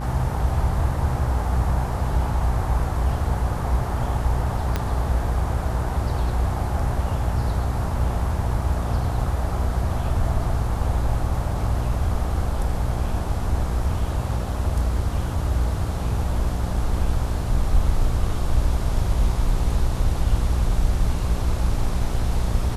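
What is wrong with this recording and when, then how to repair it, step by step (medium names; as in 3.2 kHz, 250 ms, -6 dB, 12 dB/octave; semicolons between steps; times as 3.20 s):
buzz 60 Hz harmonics 28 -26 dBFS
4.76 s: pop -9 dBFS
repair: de-click; de-hum 60 Hz, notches 28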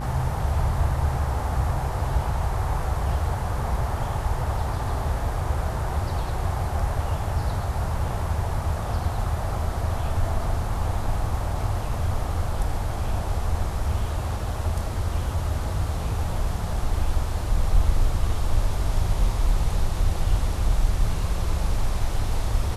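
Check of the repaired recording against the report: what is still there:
4.76 s: pop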